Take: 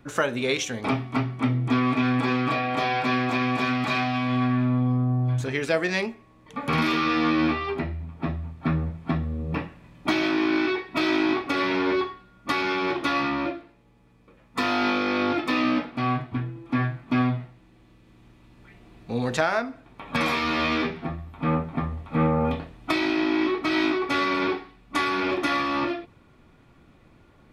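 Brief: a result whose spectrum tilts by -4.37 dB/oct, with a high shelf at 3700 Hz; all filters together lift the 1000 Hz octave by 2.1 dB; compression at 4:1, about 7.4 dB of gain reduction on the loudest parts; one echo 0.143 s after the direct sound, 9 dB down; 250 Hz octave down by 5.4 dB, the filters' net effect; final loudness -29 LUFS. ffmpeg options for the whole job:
-af "equalizer=f=250:t=o:g=-7,equalizer=f=1k:t=o:g=3.5,highshelf=f=3.7k:g=-5.5,acompressor=threshold=-27dB:ratio=4,aecho=1:1:143:0.355,volume=1.5dB"

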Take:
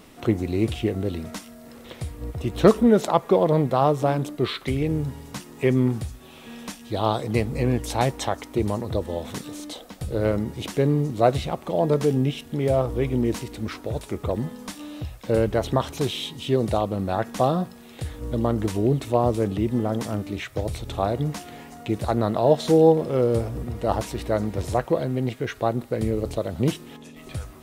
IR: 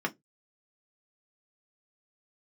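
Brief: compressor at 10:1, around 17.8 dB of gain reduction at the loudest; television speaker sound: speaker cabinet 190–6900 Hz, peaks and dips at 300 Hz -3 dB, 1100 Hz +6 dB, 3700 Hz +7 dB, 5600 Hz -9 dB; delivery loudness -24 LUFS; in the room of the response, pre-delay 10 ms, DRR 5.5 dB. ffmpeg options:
-filter_complex "[0:a]acompressor=threshold=-29dB:ratio=10,asplit=2[a][b];[1:a]atrim=start_sample=2205,adelay=10[c];[b][c]afir=irnorm=-1:irlink=0,volume=-13dB[d];[a][d]amix=inputs=2:normalize=0,highpass=f=190:w=0.5412,highpass=f=190:w=1.3066,equalizer=f=300:t=q:w=4:g=-3,equalizer=f=1.1k:t=q:w=4:g=6,equalizer=f=3.7k:t=q:w=4:g=7,equalizer=f=5.6k:t=q:w=4:g=-9,lowpass=f=6.9k:w=0.5412,lowpass=f=6.9k:w=1.3066,volume=11.5dB"

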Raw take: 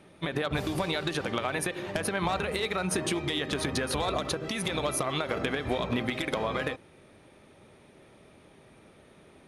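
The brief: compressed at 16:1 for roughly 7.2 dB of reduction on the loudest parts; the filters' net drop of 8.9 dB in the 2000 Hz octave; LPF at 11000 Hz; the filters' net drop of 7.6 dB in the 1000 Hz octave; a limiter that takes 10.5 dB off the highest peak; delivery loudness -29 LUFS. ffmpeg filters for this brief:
-af "lowpass=11k,equalizer=f=1k:t=o:g=-8,equalizer=f=2k:t=o:g=-9,acompressor=threshold=-34dB:ratio=16,volume=14dB,alimiter=limit=-20dB:level=0:latency=1"

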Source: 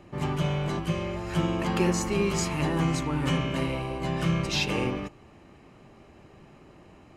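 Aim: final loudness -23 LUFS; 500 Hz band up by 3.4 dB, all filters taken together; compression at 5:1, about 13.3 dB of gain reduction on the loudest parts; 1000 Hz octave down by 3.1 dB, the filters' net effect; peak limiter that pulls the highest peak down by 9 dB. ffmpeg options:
-af "equalizer=f=500:t=o:g=6,equalizer=f=1k:t=o:g=-6,acompressor=threshold=-34dB:ratio=5,volume=18.5dB,alimiter=limit=-13.5dB:level=0:latency=1"

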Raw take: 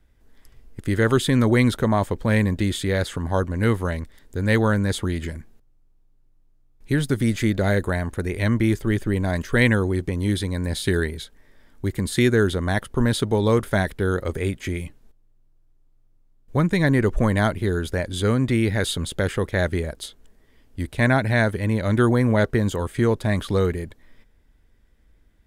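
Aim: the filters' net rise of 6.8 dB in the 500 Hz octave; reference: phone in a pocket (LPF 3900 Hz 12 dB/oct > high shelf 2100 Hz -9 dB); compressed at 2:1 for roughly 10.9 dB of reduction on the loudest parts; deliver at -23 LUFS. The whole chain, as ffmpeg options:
-af "equalizer=f=500:t=o:g=9,acompressor=threshold=-30dB:ratio=2,lowpass=3.9k,highshelf=f=2.1k:g=-9,volume=5.5dB"

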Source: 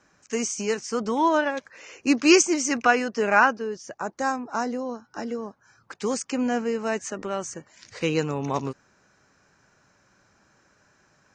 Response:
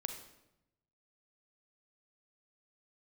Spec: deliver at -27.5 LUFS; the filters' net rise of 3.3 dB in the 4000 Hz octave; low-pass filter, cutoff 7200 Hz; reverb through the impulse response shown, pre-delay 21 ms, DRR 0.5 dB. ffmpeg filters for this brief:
-filter_complex "[0:a]lowpass=7.2k,equalizer=f=4k:t=o:g=5.5,asplit=2[a][b];[1:a]atrim=start_sample=2205,adelay=21[c];[b][c]afir=irnorm=-1:irlink=0,volume=0dB[d];[a][d]amix=inputs=2:normalize=0,volume=-6dB"

